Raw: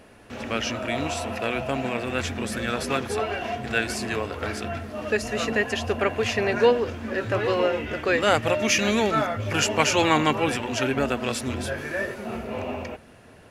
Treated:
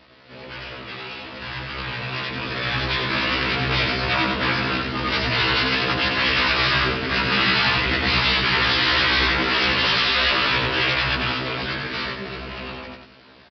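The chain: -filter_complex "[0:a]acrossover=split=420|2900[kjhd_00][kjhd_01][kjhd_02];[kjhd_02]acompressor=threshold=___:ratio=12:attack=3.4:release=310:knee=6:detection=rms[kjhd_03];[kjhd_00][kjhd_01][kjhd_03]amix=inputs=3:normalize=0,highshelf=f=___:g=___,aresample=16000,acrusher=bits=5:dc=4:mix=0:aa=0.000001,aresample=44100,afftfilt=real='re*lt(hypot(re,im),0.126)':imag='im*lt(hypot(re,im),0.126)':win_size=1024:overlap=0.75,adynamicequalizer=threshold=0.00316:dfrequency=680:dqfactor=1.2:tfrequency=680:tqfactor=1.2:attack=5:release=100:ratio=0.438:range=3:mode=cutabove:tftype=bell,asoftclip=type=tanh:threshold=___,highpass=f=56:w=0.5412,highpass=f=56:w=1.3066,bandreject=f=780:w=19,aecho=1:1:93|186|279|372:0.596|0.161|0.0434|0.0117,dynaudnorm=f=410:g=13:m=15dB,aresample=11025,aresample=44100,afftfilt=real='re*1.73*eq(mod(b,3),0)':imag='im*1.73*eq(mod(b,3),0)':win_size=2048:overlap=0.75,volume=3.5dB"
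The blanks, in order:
-44dB, 3500, 9, -31dB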